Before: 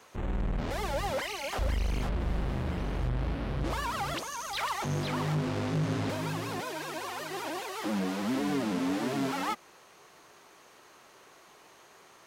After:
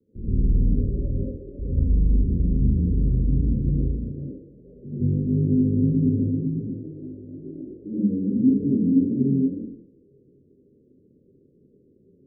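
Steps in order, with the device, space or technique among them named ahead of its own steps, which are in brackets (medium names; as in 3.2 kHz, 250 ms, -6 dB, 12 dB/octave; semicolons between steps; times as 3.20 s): next room (low-pass 340 Hz 24 dB/octave; reverberation RT60 0.70 s, pre-delay 70 ms, DRR -10.5 dB); 4.11–5.00 s: bass shelf 140 Hz -9.5 dB; 6.46–7.93 s: comb 1.1 ms, depth 53%; steep low-pass 560 Hz 72 dB/octave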